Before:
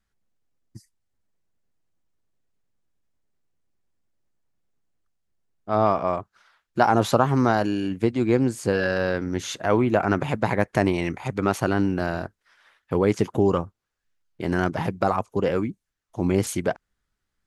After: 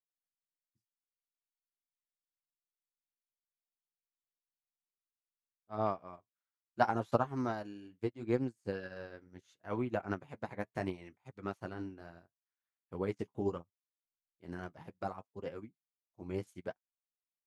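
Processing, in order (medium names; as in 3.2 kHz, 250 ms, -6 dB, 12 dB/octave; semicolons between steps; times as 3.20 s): flange 0.71 Hz, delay 7.3 ms, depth 6.9 ms, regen -48%; upward expansion 2.5:1, over -40 dBFS; trim -4.5 dB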